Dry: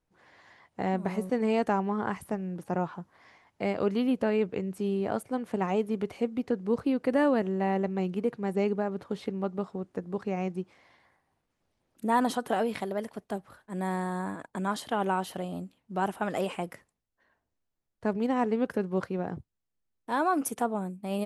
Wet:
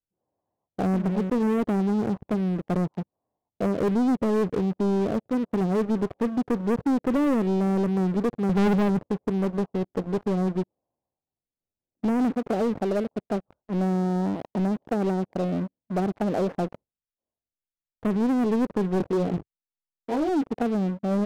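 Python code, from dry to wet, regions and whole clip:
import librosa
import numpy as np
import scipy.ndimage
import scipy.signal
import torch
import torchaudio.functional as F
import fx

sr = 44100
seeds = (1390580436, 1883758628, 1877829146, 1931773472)

y = fx.chain(x, sr, fx.lowpass_res(hz=790.0, q=3.9),
    fx.tilt_eq(slope=-4.5),
    fx.band_widen(depth_pct=100), at=(8.49, 8.99))
y = fx.chain(y, sr, fx.peak_eq(hz=430.0, db=5.0, octaves=2.1),
    fx.detune_double(cents=13), at=(18.98, 20.29))
y = fx.env_lowpass_down(y, sr, base_hz=480.0, full_db=-26.0)
y = scipy.signal.sosfilt(scipy.signal.cheby2(4, 80, 4400.0, 'lowpass', fs=sr, output='sos'), y)
y = fx.leveller(y, sr, passes=5)
y = y * 10.0 ** (-8.0 / 20.0)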